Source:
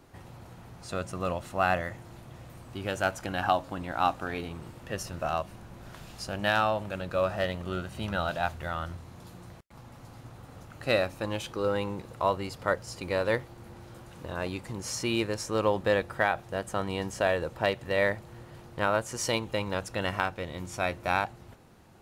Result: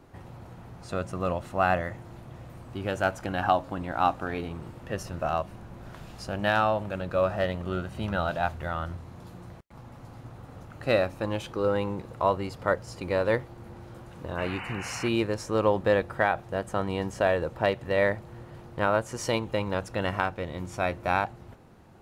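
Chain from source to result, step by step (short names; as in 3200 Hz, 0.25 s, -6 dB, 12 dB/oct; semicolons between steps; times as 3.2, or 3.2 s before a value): high shelf 2400 Hz -8 dB; painted sound noise, 14.38–15.09, 690–3000 Hz -42 dBFS; gain +3 dB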